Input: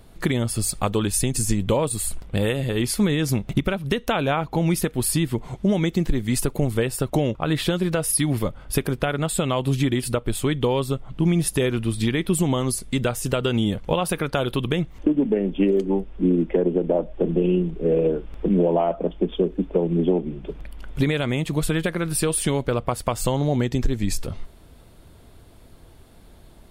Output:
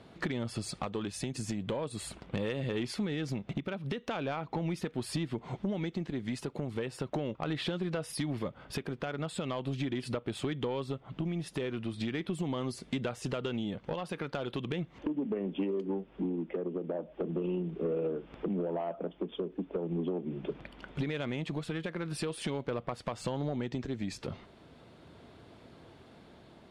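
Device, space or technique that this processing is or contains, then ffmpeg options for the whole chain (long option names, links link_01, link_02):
AM radio: -af "highpass=140,lowpass=4200,acompressor=threshold=-29dB:ratio=6,asoftclip=type=tanh:threshold=-23.5dB,tremolo=f=0.39:d=0.19"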